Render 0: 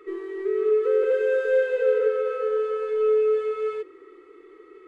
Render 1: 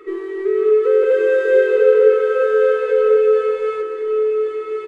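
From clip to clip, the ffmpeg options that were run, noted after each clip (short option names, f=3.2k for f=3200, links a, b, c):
-af "aecho=1:1:1093:0.596,volume=7dB"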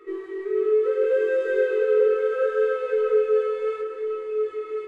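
-af "flanger=delay=17.5:depth=6.3:speed=0.71,volume=-4.5dB"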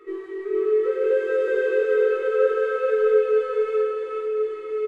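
-af "aecho=1:1:442:0.708"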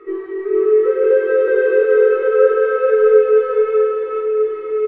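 -af "lowpass=2k,volume=7.5dB"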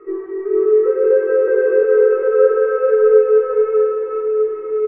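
-af "lowpass=1.4k"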